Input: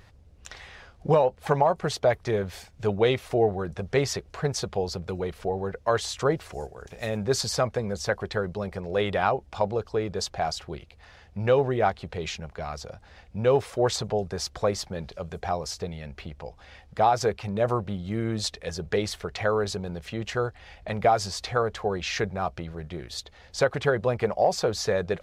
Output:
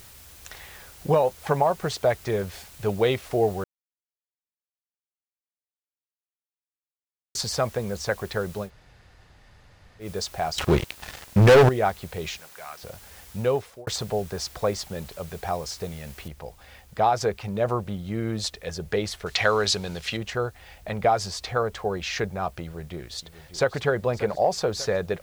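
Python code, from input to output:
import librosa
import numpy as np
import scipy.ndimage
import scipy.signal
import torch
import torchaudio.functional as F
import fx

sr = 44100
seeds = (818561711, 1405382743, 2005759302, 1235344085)

y = fx.leveller(x, sr, passes=5, at=(10.58, 11.69))
y = fx.bandpass_q(y, sr, hz=1900.0, q=0.86, at=(12.38, 12.83))
y = fx.noise_floor_step(y, sr, seeds[0], at_s=16.28, before_db=-49, after_db=-60, tilt_db=0.0)
y = fx.peak_eq(y, sr, hz=3900.0, db=13.0, octaves=2.9, at=(19.26, 20.17))
y = fx.echo_throw(y, sr, start_s=22.63, length_s=1.13, ms=590, feedback_pct=55, wet_db=-13.5)
y = fx.edit(y, sr, fx.silence(start_s=3.64, length_s=3.71),
    fx.room_tone_fill(start_s=8.66, length_s=1.38, crossfade_s=0.1),
    fx.fade_out_span(start_s=13.4, length_s=0.47), tone=tone)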